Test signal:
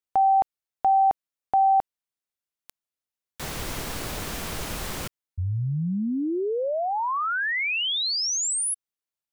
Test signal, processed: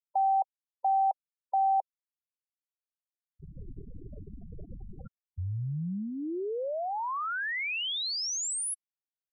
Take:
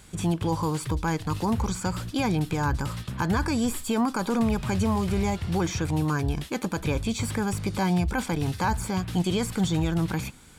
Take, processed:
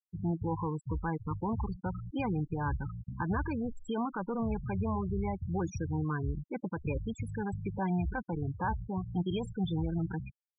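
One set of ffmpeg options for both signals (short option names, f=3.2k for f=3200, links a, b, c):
-filter_complex "[0:a]adynamicequalizer=threshold=0.00794:dfrequency=250:dqfactor=3.7:tfrequency=250:tqfactor=3.7:attack=5:release=100:ratio=0.375:range=3:mode=cutabove:tftype=bell,asplit=2[a][b];[b]adelay=80,highpass=300,lowpass=3.4k,asoftclip=type=hard:threshold=-23dB,volume=-26dB[c];[a][c]amix=inputs=2:normalize=0,afftfilt=real='re*gte(hypot(re,im),0.0794)':imag='im*gte(hypot(re,im),0.0794)':win_size=1024:overlap=0.75,volume=-6.5dB"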